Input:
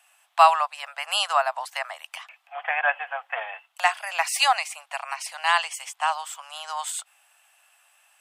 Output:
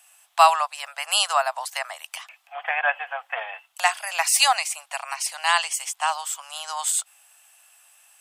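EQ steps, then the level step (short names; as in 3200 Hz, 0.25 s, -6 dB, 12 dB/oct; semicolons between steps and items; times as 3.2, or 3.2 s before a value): tone controls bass +11 dB, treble +9 dB; 0.0 dB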